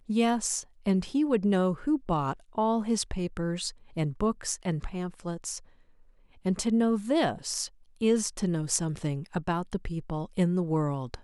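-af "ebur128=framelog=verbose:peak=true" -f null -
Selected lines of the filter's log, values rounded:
Integrated loudness:
  I:         -29.2 LUFS
  Threshold: -39.5 LUFS
Loudness range:
  LRA:         4.6 LU
  Threshold: -49.8 LUFS
  LRA low:   -33.0 LUFS
  LRA high:  -28.4 LUFS
True peak:
  Peak:       -7.5 dBFS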